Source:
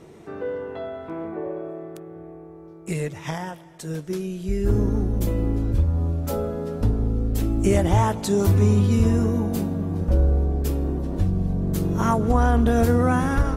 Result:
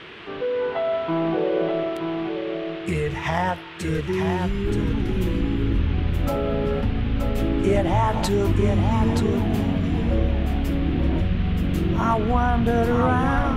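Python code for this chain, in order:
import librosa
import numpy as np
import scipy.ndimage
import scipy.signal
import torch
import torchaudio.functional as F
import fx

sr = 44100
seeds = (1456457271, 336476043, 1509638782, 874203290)

p1 = fx.octave_divider(x, sr, octaves=1, level_db=-3.0)
p2 = fx.bass_treble(p1, sr, bass_db=-7, treble_db=-14)
p3 = fx.over_compress(p2, sr, threshold_db=-33.0, ratio=-1.0)
p4 = p2 + (p3 * 10.0 ** (2.5 / 20.0))
p5 = fx.noise_reduce_blind(p4, sr, reduce_db=9)
p6 = fx.dmg_noise_band(p5, sr, seeds[0], low_hz=970.0, high_hz=3300.0, level_db=-43.0)
y = p6 + 10.0 ** (-6.0 / 20.0) * np.pad(p6, (int(925 * sr / 1000.0), 0))[:len(p6)]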